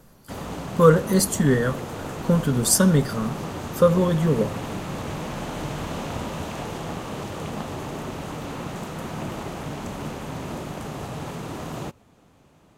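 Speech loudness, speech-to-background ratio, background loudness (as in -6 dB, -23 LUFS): -20.5 LUFS, 12.0 dB, -32.5 LUFS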